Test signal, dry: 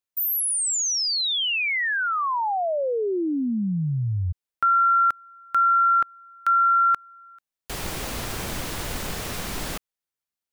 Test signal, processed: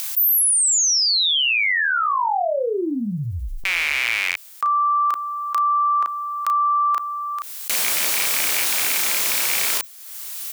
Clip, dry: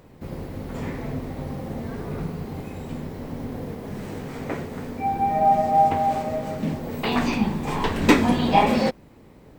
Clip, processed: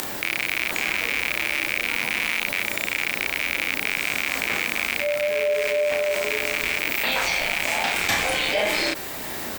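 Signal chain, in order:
loose part that buzzes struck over −32 dBFS, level −18 dBFS
upward compression, threshold −36 dBFS
high-pass filter 530 Hz 12 dB per octave
spectral tilt +3.5 dB per octave
frequency shifter −200 Hz
double-tracking delay 34 ms −5 dB
envelope flattener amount 70%
level −7 dB

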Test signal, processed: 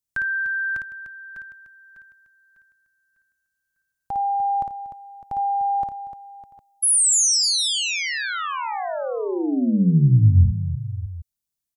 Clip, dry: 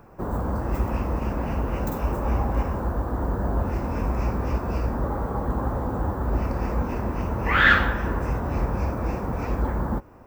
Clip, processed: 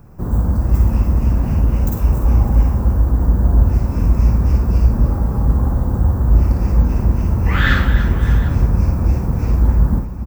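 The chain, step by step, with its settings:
bass and treble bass +15 dB, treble +11 dB
on a send: multi-tap delay 55/299/605/757 ms −5/−11/−15.5/−18 dB
on the sum: level −3.5 dB

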